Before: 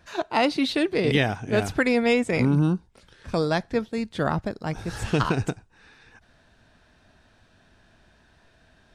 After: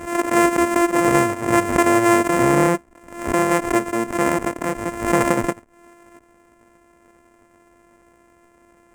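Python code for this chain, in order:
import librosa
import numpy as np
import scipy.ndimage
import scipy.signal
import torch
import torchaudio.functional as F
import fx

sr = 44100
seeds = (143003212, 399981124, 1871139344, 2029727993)

y = np.r_[np.sort(x[:len(x) // 128 * 128].reshape(-1, 128), axis=1).ravel(), x[len(x) // 128 * 128:]]
y = fx.graphic_eq(y, sr, hz=(250, 500, 1000, 2000, 4000, 8000), db=(9, 11, 8, 11, -11, 12))
y = fx.pre_swell(y, sr, db_per_s=93.0)
y = F.gain(torch.from_numpy(y), -5.0).numpy()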